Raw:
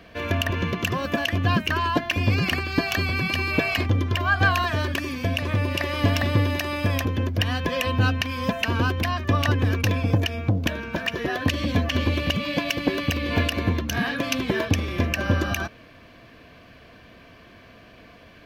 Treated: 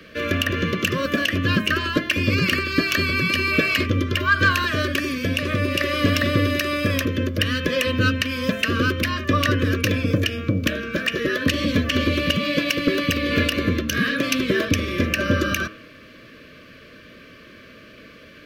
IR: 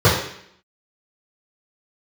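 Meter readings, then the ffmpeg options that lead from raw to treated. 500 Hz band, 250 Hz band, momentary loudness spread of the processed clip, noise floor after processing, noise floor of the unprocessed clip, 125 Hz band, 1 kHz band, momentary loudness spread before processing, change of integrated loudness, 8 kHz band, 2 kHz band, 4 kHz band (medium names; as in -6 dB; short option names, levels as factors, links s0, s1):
+3.5 dB, +4.0 dB, 4 LU, -46 dBFS, -49 dBFS, -1.0 dB, 0.0 dB, 4 LU, +3.0 dB, +4.5 dB, +4.5 dB, +4.0 dB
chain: -filter_complex "[0:a]bandreject=f=105.3:t=h:w=4,bandreject=f=210.6:t=h:w=4,bandreject=f=315.9:t=h:w=4,bandreject=f=421.2:t=h:w=4,bandreject=f=526.5:t=h:w=4,bandreject=f=631.8:t=h:w=4,bandreject=f=737.1:t=h:w=4,bandreject=f=842.4:t=h:w=4,bandreject=f=947.7:t=h:w=4,bandreject=f=1053:t=h:w=4,bandreject=f=1158.3:t=h:w=4,bandreject=f=1263.6:t=h:w=4,bandreject=f=1368.9:t=h:w=4,bandreject=f=1474.2:t=h:w=4,bandreject=f=1579.5:t=h:w=4,bandreject=f=1684.8:t=h:w=4,bandreject=f=1790.1:t=h:w=4,bandreject=f=1895.4:t=h:w=4,bandreject=f=2000.7:t=h:w=4,bandreject=f=2106:t=h:w=4,bandreject=f=2211.3:t=h:w=4,bandreject=f=2316.6:t=h:w=4,bandreject=f=2421.9:t=h:w=4,bandreject=f=2527.2:t=h:w=4,bandreject=f=2632.5:t=h:w=4,bandreject=f=2737.8:t=h:w=4,bandreject=f=2843.1:t=h:w=4,bandreject=f=2948.4:t=h:w=4,bandreject=f=3053.7:t=h:w=4,bandreject=f=3159:t=h:w=4,bandreject=f=3264.3:t=h:w=4,bandreject=f=3369.6:t=h:w=4,bandreject=f=3474.9:t=h:w=4,bandreject=f=3580.2:t=h:w=4,acrossover=split=150[s0][s1];[s1]aeval=exprs='0.447*sin(PI/2*1.58*val(0)/0.447)':c=same[s2];[s0][s2]amix=inputs=2:normalize=0,asuperstop=centerf=830:order=12:qfactor=1.8,volume=0.75"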